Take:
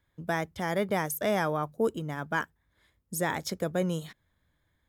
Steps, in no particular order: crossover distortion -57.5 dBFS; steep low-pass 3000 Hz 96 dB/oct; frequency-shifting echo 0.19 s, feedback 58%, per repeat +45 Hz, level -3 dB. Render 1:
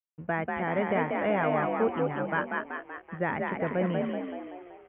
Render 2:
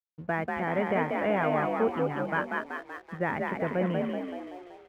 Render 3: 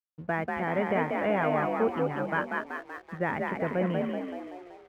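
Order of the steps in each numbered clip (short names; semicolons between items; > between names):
frequency-shifting echo > crossover distortion > steep low-pass; steep low-pass > frequency-shifting echo > crossover distortion; frequency-shifting echo > steep low-pass > crossover distortion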